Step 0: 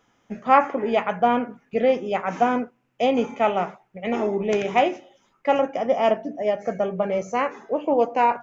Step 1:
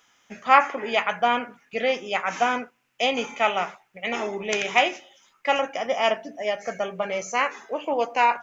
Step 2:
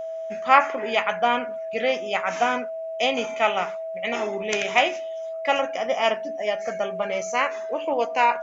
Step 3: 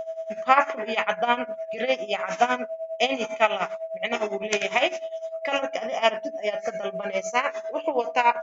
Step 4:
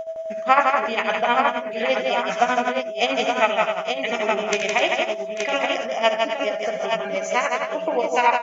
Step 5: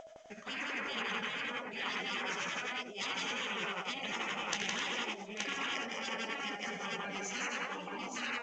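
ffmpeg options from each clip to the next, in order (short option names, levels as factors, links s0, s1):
-af "tiltshelf=f=970:g=-10"
-af "aeval=exprs='val(0)+0.0355*sin(2*PI*650*n/s)':c=same"
-af "tremolo=f=9.9:d=0.81,volume=1.33"
-af "aecho=1:1:69|161|258|841|873:0.237|0.631|0.316|0.141|0.562,volume=1.19"
-af "afftfilt=real='re*lt(hypot(re,im),0.158)':imag='im*lt(hypot(re,im),0.158)':win_size=1024:overlap=0.75,volume=0.473" -ar 16000 -c:a g722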